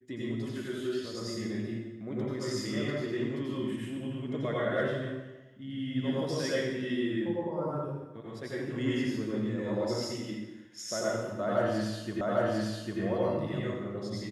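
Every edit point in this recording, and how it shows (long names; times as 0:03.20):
0:12.21: the same again, the last 0.8 s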